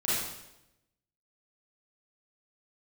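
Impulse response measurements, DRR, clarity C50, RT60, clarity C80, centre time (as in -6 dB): -10.0 dB, -3.5 dB, 0.90 s, 2.0 dB, 85 ms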